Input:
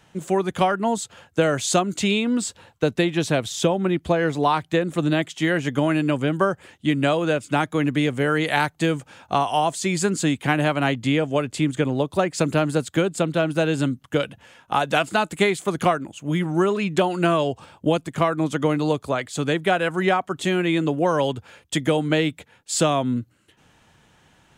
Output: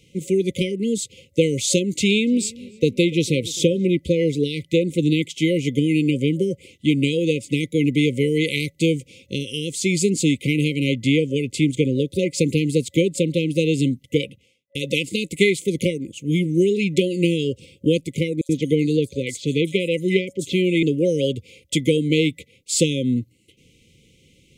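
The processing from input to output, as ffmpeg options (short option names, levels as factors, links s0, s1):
-filter_complex "[0:a]asettb=1/sr,asplit=3[s0][s1][s2];[s0]atrim=end=1.804[s3];[s1]atrim=start=1.8:end=3.86,asetpts=PTS-STARTPTS,afade=t=in:d=0.004:c=qsin,afade=t=out:st=2.056:d=0.004:c=qsin,asplit=2[s4][s5];[s5]adelay=290,lowpass=f=1800:p=1,volume=0.1,asplit=2[s6][s7];[s7]adelay=290,lowpass=f=1800:p=1,volume=0.51,asplit=2[s8][s9];[s9]adelay=290,lowpass=f=1800:p=1,volume=0.51,asplit=2[s10][s11];[s11]adelay=290,lowpass=f=1800:p=1,volume=0.51[s12];[s4][s6][s8][s10][s12]amix=inputs=5:normalize=0,atrim=end_sample=90846[s13];[s2]atrim=start=3.856[s14];[s3][s13]acrossfade=d=0.004:c1=hsin:c2=qsin[s15];[s15][s14]acrossfade=d=0.004:c1=qsin:c2=hsin,asettb=1/sr,asplit=3[s16][s17][s18];[s16]atrim=end=18.414[s19];[s17]atrim=start=18.41:end=20.83,asetpts=PTS-STARTPTS,afade=t=in:d=0.004:c=qsin,afade=t=out:st=2.416:d=0.004:c=qsin,acrossover=split=5200[s20][s21];[s20]adelay=80[s22];[s22][s21]amix=inputs=2:normalize=0,atrim=end_sample=106722[s23];[s18]atrim=start=20.826[s24];[s19][s23]acrossfade=d=0.004:c1=hsin:c2=qsin[s25];[s25][s24]acrossfade=d=0.004:c1=qsin:c2=hsin,asplit=2[s26][s27];[s26]atrim=end=14.75,asetpts=PTS-STARTPTS,afade=t=out:st=14.2:d=0.55:c=qua[s28];[s27]atrim=start=14.75,asetpts=PTS-STARTPTS,afade=t=in:d=0.004:c=hsin[s29];[s28][s29]concat=n=2:v=0:a=1,afftfilt=real='re*(1-between(b*sr/4096,550,2000))':imag='im*(1-between(b*sr/4096,550,2000))':win_size=4096:overlap=0.75,volume=1.41"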